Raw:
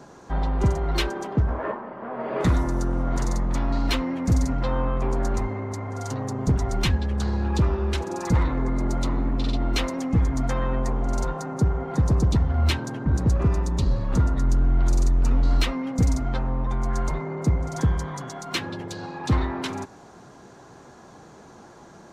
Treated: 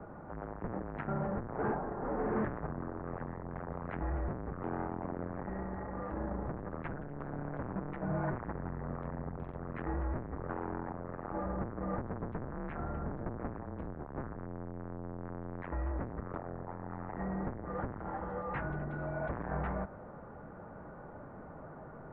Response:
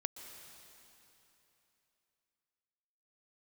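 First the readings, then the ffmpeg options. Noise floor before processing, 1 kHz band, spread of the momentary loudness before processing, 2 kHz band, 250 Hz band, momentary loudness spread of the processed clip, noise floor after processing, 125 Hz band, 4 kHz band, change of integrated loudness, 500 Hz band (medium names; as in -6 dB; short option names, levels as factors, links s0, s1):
-48 dBFS, -8.5 dB, 8 LU, -10.5 dB, -12.0 dB, 9 LU, -49 dBFS, -16.5 dB, under -35 dB, -14.5 dB, -8.5 dB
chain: -af "lowshelf=f=100:g=10.5,asoftclip=type=tanh:threshold=0.0422,highpass=f=270:t=q:w=0.5412,highpass=f=270:t=q:w=1.307,lowpass=f=2000:t=q:w=0.5176,lowpass=f=2000:t=q:w=0.7071,lowpass=f=2000:t=q:w=1.932,afreqshift=-200"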